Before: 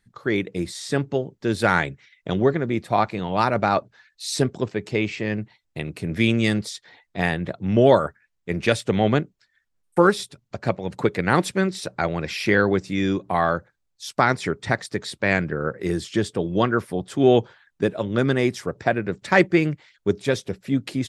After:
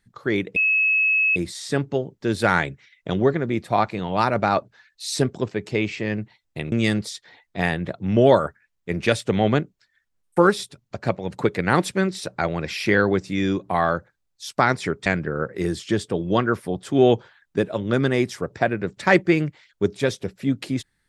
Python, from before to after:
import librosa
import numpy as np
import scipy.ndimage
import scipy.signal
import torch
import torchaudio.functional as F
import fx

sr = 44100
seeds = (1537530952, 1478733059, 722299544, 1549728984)

y = fx.edit(x, sr, fx.insert_tone(at_s=0.56, length_s=0.8, hz=2580.0, db=-16.0),
    fx.cut(start_s=5.92, length_s=0.4),
    fx.cut(start_s=14.66, length_s=0.65), tone=tone)